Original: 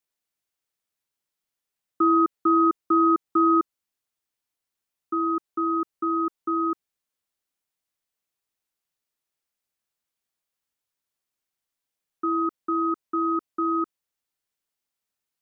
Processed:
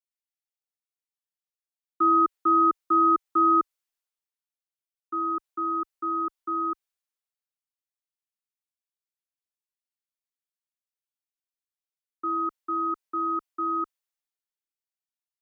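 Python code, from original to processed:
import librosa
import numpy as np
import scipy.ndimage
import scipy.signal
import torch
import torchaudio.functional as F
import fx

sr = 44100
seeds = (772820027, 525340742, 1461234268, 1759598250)

y = fx.peak_eq(x, sr, hz=140.0, db=-14.5, octaves=2.4)
y = fx.band_widen(y, sr, depth_pct=40)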